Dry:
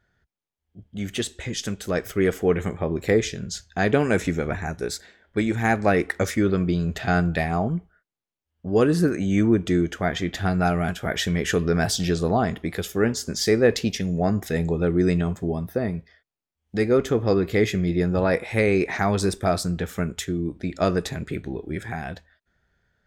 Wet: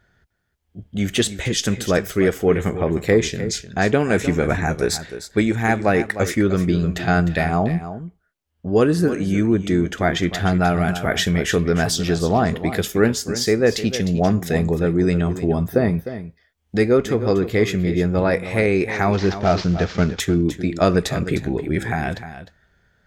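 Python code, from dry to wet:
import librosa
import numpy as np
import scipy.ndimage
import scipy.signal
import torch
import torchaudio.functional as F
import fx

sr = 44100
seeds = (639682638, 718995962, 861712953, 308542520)

y = fx.cvsd(x, sr, bps=32000, at=(19.13, 20.2))
y = fx.rider(y, sr, range_db=4, speed_s=0.5)
y = y + 10.0 ** (-12.0 / 20.0) * np.pad(y, (int(305 * sr / 1000.0), 0))[:len(y)]
y = F.gain(torch.from_numpy(y), 4.0).numpy()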